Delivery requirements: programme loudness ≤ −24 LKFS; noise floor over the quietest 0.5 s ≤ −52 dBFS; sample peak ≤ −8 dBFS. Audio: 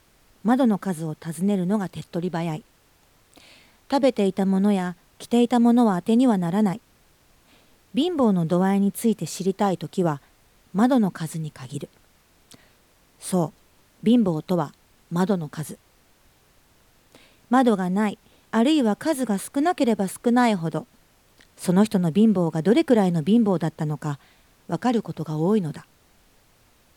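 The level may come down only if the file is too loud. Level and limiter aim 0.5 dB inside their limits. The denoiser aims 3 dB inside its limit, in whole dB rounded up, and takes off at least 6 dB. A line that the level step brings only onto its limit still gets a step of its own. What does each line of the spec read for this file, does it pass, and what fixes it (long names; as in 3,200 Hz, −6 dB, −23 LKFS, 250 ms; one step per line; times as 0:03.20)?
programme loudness −22.5 LKFS: out of spec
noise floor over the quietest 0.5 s −59 dBFS: in spec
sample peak −6.5 dBFS: out of spec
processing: level −2 dB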